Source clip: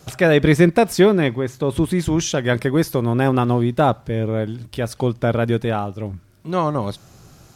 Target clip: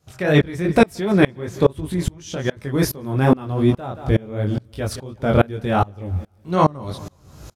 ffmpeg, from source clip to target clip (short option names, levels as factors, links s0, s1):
-filter_complex "[0:a]equalizer=f=72:w=1.6:g=12,asettb=1/sr,asplit=3[s0][s1][s2];[s0]atrim=end=1.884[s3];[s1]atrim=start=1.88:end=2.57,asetpts=PTS-STARTPTS,afade=t=in:d=0.004:c=qsin,afade=t=out:st=0.686:d=0.004:c=qsin,acompressor=threshold=0.0794:ratio=12[s4];[s2]atrim=start=2.566[s5];[s3][s4]acrossfade=d=0.004:c1=hsin:c2=qsin[s6];[s6][s5]acrossfade=d=0.004:c1=qsin:c2=hsin,flanger=delay=19.5:depth=3.7:speed=2.7,aecho=1:1:176|352|528|704:0.1|0.05|0.025|0.0125,alimiter=level_in=3.76:limit=0.891:release=50:level=0:latency=1,aeval=exprs='val(0)*pow(10,-28*if(lt(mod(-2.4*n/s,1),2*abs(-2.4)/1000),1-mod(-2.4*n/s,1)/(2*abs(-2.4)/1000),(mod(-2.4*n/s,1)-2*abs(-2.4)/1000)/(1-2*abs(-2.4)/1000))/20)':c=same"